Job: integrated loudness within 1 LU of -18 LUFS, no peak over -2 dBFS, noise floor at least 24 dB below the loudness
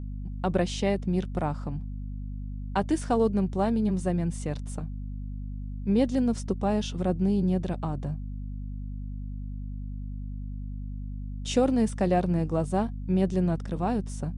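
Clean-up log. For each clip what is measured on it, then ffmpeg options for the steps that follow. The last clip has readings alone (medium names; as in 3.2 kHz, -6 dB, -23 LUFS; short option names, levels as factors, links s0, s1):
hum 50 Hz; highest harmonic 250 Hz; hum level -33 dBFS; loudness -29.0 LUFS; peak level -11.0 dBFS; loudness target -18.0 LUFS
-> -af "bandreject=f=50:t=h:w=6,bandreject=f=100:t=h:w=6,bandreject=f=150:t=h:w=6,bandreject=f=200:t=h:w=6,bandreject=f=250:t=h:w=6"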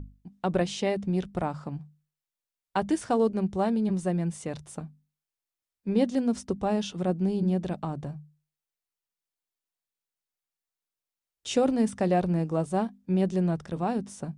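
hum not found; loudness -28.0 LUFS; peak level -12.5 dBFS; loudness target -18.0 LUFS
-> -af "volume=3.16"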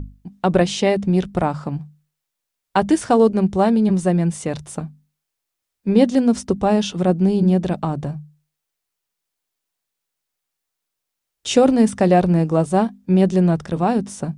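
loudness -18.0 LUFS; peak level -2.5 dBFS; noise floor -81 dBFS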